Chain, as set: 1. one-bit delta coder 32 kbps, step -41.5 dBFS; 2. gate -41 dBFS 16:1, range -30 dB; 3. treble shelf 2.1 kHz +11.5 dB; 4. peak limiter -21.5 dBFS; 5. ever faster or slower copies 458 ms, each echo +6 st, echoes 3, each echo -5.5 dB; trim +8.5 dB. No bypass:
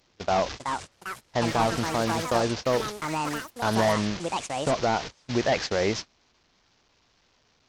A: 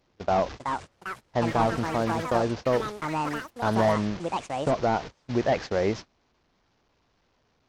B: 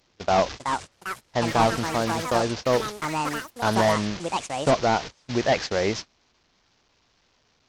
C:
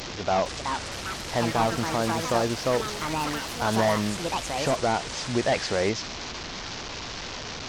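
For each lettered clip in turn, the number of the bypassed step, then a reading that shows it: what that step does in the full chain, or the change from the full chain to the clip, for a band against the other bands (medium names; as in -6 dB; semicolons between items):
3, 8 kHz band -9.5 dB; 4, crest factor change +2.0 dB; 2, momentary loudness spread change +2 LU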